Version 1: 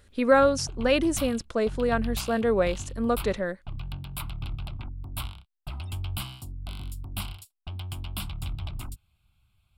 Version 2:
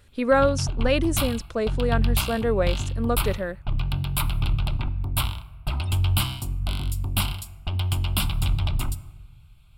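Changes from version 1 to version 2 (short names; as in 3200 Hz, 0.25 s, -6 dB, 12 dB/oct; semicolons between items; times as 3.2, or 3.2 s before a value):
background +8.0 dB; reverb: on, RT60 1.3 s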